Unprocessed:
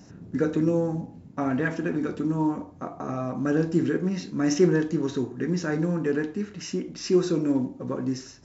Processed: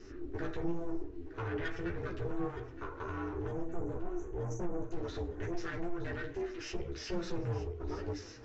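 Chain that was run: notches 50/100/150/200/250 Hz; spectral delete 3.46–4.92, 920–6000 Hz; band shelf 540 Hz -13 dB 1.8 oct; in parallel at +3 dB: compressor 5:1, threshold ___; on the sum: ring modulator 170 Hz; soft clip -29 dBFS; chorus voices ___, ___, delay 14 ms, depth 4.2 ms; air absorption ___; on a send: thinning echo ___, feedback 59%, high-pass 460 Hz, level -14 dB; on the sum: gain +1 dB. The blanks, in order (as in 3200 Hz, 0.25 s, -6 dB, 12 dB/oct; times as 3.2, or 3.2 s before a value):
-40 dBFS, 4, 0.56 Hz, 150 m, 0.917 s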